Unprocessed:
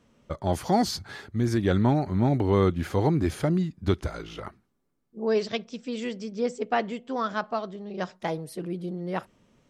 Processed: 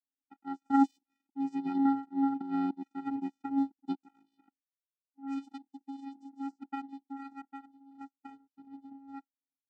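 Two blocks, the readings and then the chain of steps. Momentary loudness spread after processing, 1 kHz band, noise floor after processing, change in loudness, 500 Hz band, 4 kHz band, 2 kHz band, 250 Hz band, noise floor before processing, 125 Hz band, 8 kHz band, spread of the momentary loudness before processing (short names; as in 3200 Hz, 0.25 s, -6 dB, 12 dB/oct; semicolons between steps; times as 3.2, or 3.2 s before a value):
21 LU, -6.5 dB, under -85 dBFS, -6.0 dB, -28.5 dB, under -20 dB, -17.5 dB, -4.0 dB, -70 dBFS, -30.5 dB, under -20 dB, 12 LU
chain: vocoder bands 8, square 274 Hz; power-law curve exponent 2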